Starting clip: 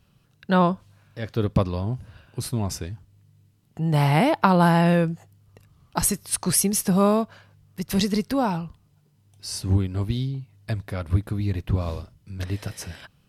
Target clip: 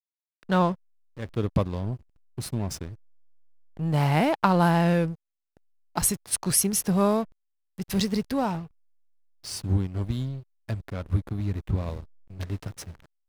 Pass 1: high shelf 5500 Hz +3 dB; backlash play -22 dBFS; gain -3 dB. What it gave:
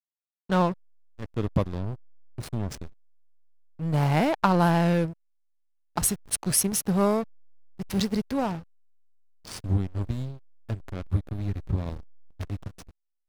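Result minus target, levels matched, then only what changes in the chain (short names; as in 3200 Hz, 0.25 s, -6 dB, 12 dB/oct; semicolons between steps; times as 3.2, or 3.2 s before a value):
backlash: distortion +8 dB
change: backlash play -30.5 dBFS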